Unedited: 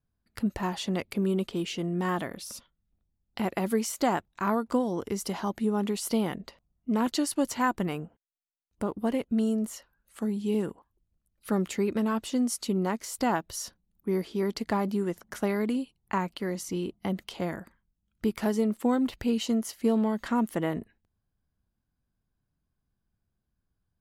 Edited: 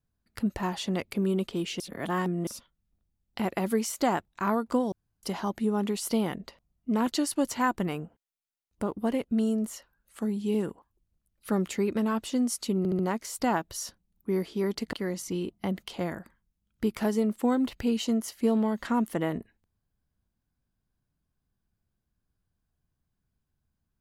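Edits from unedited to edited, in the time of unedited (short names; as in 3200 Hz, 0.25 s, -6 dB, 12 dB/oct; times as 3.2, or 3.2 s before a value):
1.8–2.47 reverse
4.92–5.23 room tone
12.78 stutter 0.07 s, 4 plays
14.72–16.34 cut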